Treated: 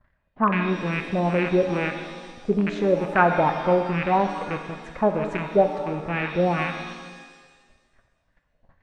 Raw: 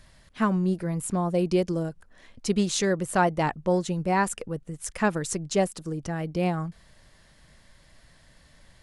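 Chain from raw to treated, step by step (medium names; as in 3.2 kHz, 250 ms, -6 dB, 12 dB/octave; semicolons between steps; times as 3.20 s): rattle on loud lows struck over -35 dBFS, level -17 dBFS; gate -51 dBFS, range -19 dB; LFO low-pass sine 2.3 Hz 590–1800 Hz; pitch-shifted reverb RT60 1.5 s, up +7 st, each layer -8 dB, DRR 6 dB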